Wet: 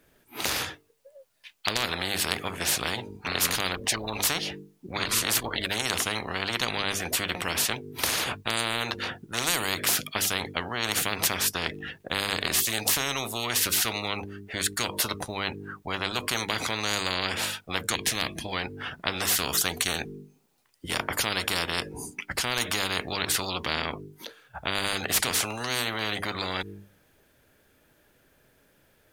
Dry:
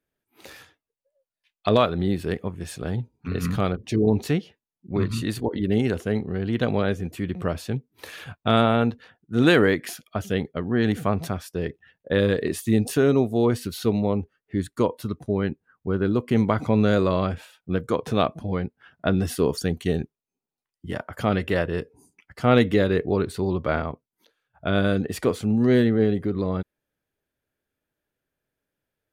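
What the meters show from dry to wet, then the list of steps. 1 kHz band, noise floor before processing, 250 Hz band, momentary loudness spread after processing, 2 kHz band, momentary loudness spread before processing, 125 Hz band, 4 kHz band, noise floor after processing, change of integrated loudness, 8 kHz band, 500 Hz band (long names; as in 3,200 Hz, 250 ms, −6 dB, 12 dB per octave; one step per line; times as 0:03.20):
−2.0 dB, below −85 dBFS, −14.5 dB, 9 LU, +3.0 dB, 12 LU, −13.0 dB, +9.0 dB, −64 dBFS, −3.0 dB, +14.5 dB, −12.0 dB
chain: gain on a spectral selection 0:17.96–0:18.45, 350–1,600 Hz −21 dB
mains-hum notches 50/100/150/200/250/300/350/400/450 Hz
every bin compressed towards the loudest bin 10 to 1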